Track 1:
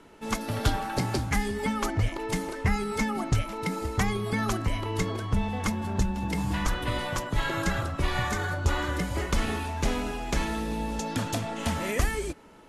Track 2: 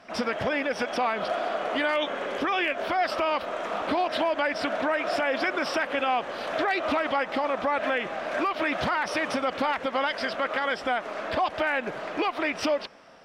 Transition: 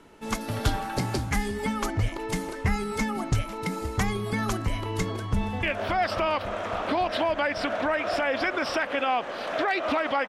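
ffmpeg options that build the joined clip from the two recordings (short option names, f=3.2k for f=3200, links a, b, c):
-filter_complex "[0:a]apad=whole_dur=10.28,atrim=end=10.28,atrim=end=5.632[a];[1:a]atrim=start=2.628:end=7.28[b];[a][b]acrossfade=d=0.004:c1=hsin:c2=hsin,asplit=2[c][d];[d]afade=t=in:st=5.12:d=0.01,afade=t=out:st=5.63:d=0.01,aecho=0:1:280|560|840|1120|1400|1680|1960|2240|2520|2800|3080|3360:0.266073|0.226162|0.192237|0.163402|0.138892|0.118058|0.100349|0.0852967|0.0725022|0.0616269|0.0523829|0.0445254[e];[c][e]amix=inputs=2:normalize=0"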